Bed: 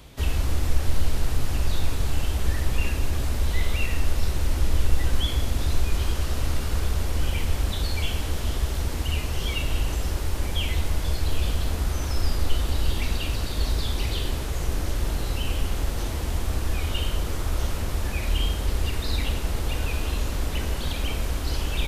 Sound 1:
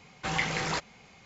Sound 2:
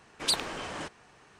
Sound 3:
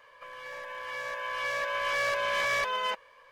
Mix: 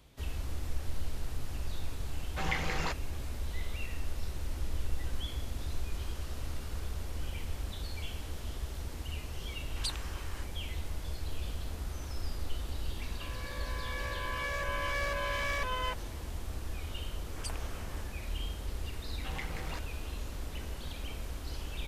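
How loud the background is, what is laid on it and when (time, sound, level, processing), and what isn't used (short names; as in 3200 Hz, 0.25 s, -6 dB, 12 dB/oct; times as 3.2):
bed -13 dB
2.13 add 1 -4 dB + high shelf 5800 Hz -7.5 dB
9.56 add 2 -9.5 dB + HPF 870 Hz 24 dB/oct
12.99 add 3 -4 dB + limiter -24 dBFS
17.16 add 2 -11.5 dB + Butterworth band-stop 3900 Hz, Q 2.3
19 add 1 -12.5 dB + Wiener smoothing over 9 samples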